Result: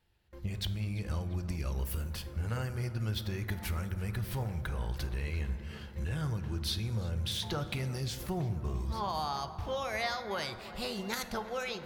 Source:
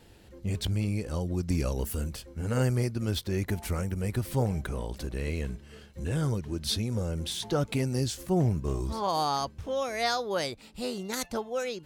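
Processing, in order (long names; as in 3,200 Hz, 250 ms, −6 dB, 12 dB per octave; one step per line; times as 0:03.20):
noise gate with hold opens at −42 dBFS
graphic EQ with 10 bands 250 Hz −10 dB, 500 Hz −7 dB, 8,000 Hz −9 dB
downward compressor, threshold −37 dBFS, peak gain reduction 11.5 dB
tape delay 343 ms, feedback 88%, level −15 dB, low-pass 2,200 Hz
convolution reverb RT60 1.9 s, pre-delay 5 ms, DRR 10 dB
level +5 dB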